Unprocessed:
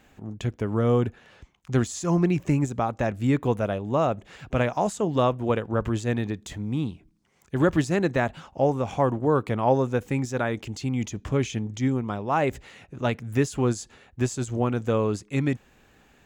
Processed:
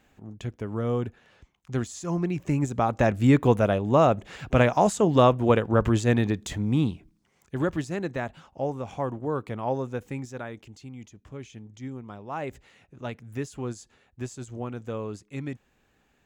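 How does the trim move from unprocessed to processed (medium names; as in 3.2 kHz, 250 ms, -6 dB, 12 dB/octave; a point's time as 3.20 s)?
2.33 s -5.5 dB
2.99 s +4 dB
6.90 s +4 dB
7.79 s -7 dB
10.07 s -7 dB
11.17 s -17 dB
12.43 s -9.5 dB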